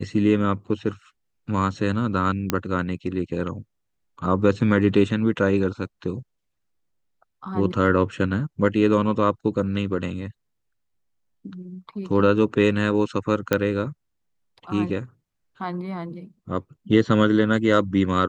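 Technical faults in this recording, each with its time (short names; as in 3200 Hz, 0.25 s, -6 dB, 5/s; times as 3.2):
2.5 pop -6 dBFS
13.53 pop -6 dBFS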